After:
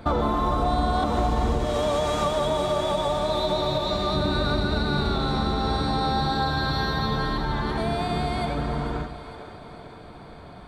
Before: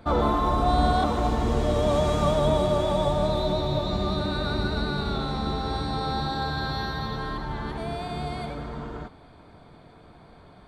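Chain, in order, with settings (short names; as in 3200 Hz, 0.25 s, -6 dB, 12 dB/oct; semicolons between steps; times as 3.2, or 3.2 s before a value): 1.65–4.14 low shelf 400 Hz -9.5 dB; compressor 5:1, threshold -27 dBFS, peak gain reduction 10 dB; split-band echo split 370 Hz, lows 0.104 s, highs 0.452 s, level -11 dB; ending taper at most 130 dB/s; gain +6.5 dB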